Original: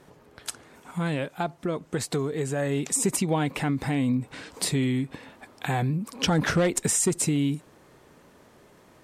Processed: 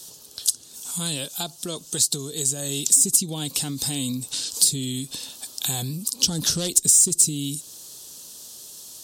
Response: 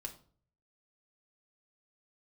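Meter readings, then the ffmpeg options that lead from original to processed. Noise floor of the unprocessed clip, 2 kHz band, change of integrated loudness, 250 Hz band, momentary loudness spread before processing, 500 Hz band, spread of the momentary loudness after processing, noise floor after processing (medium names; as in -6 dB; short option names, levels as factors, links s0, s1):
-56 dBFS, -8.5 dB, +5.5 dB, -5.0 dB, 13 LU, -7.5 dB, 23 LU, -46 dBFS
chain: -filter_complex "[0:a]aexciter=amount=14.5:drive=9.2:freq=3400,acrossover=split=380[s0][s1];[s1]acompressor=threshold=0.0708:ratio=2[s2];[s0][s2]amix=inputs=2:normalize=0,volume=0.631"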